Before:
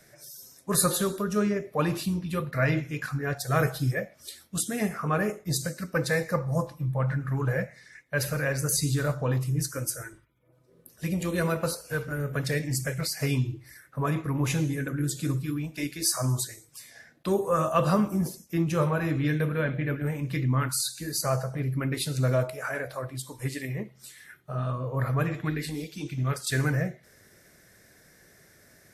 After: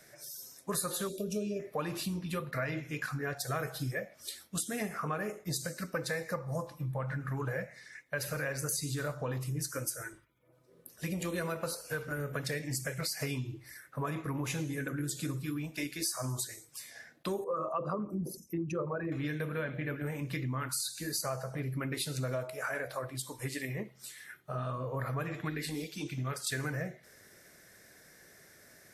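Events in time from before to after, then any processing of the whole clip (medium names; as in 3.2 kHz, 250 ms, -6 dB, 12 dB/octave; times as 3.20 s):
1.09–1.60 s: time-frequency box 710–2300 Hz -27 dB
17.44–19.12 s: resonances exaggerated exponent 2
whole clip: bass shelf 210 Hz -7.5 dB; compression 5:1, threshold -32 dBFS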